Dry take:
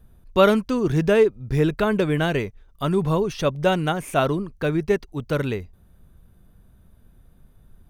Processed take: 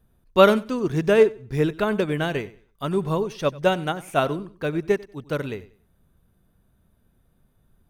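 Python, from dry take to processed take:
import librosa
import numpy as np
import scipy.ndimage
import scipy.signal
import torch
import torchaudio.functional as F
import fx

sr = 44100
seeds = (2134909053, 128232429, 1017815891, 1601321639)

p1 = fx.low_shelf(x, sr, hz=94.0, db=-8.0)
p2 = p1 + fx.echo_feedback(p1, sr, ms=94, feedback_pct=26, wet_db=-16.5, dry=0)
p3 = fx.upward_expand(p2, sr, threshold_db=-28.0, expansion=1.5)
y = F.gain(torch.from_numpy(p3), 2.5).numpy()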